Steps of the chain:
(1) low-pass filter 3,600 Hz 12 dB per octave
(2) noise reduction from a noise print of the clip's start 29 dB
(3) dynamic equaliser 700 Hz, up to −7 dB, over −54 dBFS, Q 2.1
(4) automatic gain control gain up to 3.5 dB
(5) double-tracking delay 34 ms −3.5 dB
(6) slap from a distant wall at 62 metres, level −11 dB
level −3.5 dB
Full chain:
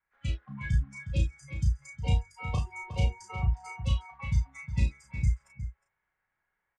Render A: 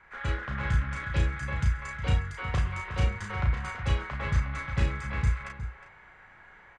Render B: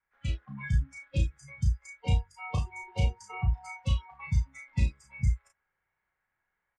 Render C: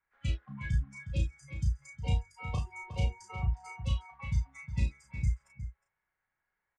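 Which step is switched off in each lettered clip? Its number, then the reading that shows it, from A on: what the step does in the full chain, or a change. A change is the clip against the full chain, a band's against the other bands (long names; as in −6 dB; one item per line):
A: 2, 2 kHz band +6.0 dB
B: 6, echo-to-direct ratio −12.0 dB to none audible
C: 4, change in momentary loudness spread −1 LU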